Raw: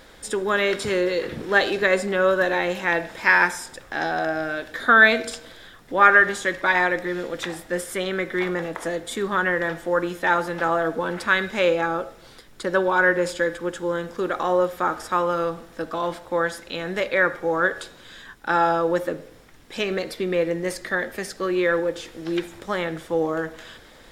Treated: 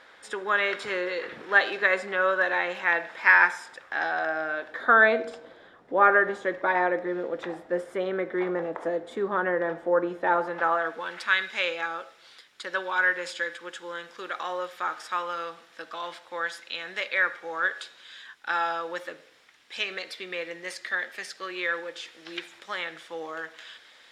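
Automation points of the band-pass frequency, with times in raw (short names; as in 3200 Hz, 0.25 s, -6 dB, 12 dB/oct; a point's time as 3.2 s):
band-pass, Q 0.83
4.2 s 1500 Hz
5.23 s 580 Hz
10.32 s 580 Hz
11.09 s 2900 Hz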